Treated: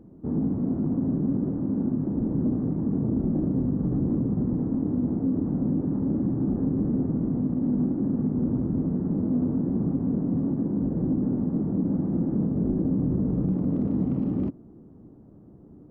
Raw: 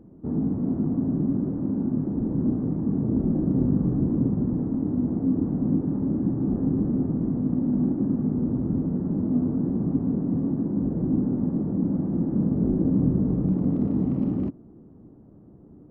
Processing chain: limiter -17 dBFS, peak gain reduction 6 dB; Doppler distortion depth 0.14 ms

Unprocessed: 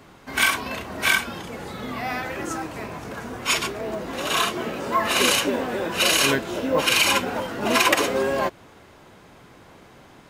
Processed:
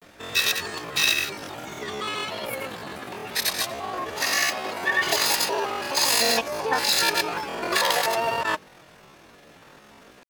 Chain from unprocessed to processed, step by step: grains, pitch spread up and down by 0 st; pitch shift +9 st

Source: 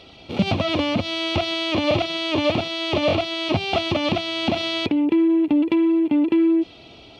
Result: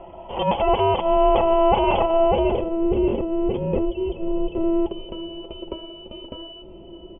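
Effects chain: 3.85–4.55 spectral contrast raised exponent 2.1; comb 6.5 ms, depth 47%; inverted band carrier 3300 Hz; diffused feedback echo 0.595 s, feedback 52%, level -15 dB; low-pass sweep 770 Hz -> 380 Hz, 2.13–2.84; gain +7 dB

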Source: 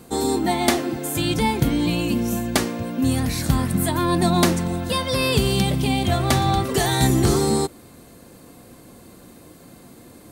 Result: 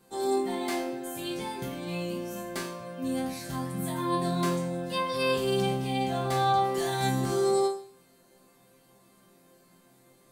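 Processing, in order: low shelf 210 Hz -7 dB; in parallel at -5.5 dB: wavefolder -13.5 dBFS; on the sum: resonator bank C3 sus4, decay 0.51 s; gain +1 dB

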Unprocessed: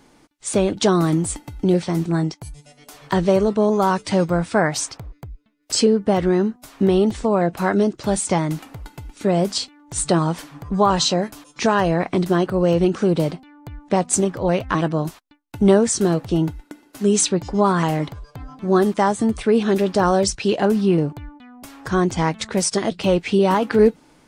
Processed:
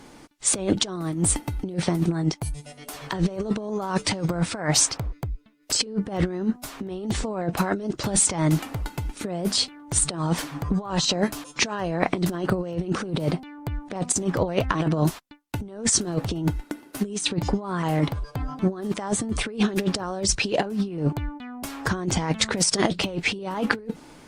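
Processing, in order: negative-ratio compressor -23 dBFS, ratio -0.5; Opus 48 kbps 48000 Hz

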